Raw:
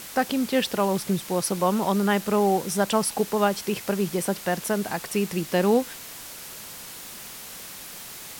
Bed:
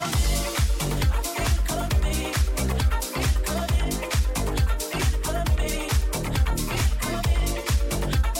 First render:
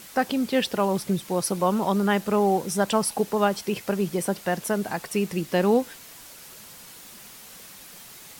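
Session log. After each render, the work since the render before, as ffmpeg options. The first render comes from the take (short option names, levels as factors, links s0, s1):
-af "afftdn=nr=6:nf=-40"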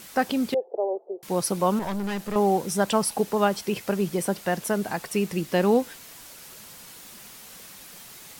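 -filter_complex "[0:a]asettb=1/sr,asplit=3[s0][s1][s2];[s0]atrim=end=0.544[s3];[s1]atrim=start=0.54:end=1.23,asetpts=PTS-STARTPTS,afade=t=in:d=0.004:c=qsin,afade=t=out:st=0.686:d=0.004:c=qsin,asuperpass=centerf=540:order=8:qfactor=1.3[s4];[s2]atrim=start=1.226[s5];[s3][s4]acrossfade=d=0.004:c1=hsin:c2=qsin[s6];[s6][s5]acrossfade=d=0.004:c1=qsin:c2=hsin,asettb=1/sr,asplit=3[s7][s8][s9];[s7]atrim=end=1.794[s10];[s8]atrim=start=1.79:end=2.36,asetpts=PTS-STARTPTS,afade=t=in:d=0.004:c=qsin,afade=t=out:st=0.566:d=0.004:c=qsin,aeval=exprs='(tanh(20*val(0)+0.45)-tanh(0.45))/20':c=same[s11];[s9]atrim=start=2.356[s12];[s10][s11]acrossfade=d=0.004:c1=hsin:c2=qsin[s13];[s13][s12]acrossfade=d=0.004:c1=qsin:c2=hsin"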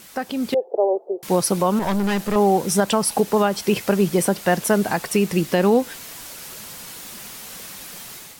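-af "alimiter=limit=0.168:level=0:latency=1:release=210,dynaudnorm=f=370:g=3:m=2.51"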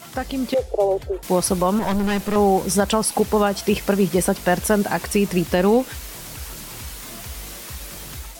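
-filter_complex "[1:a]volume=0.188[s0];[0:a][s0]amix=inputs=2:normalize=0"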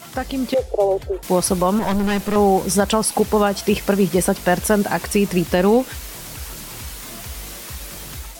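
-af "volume=1.19"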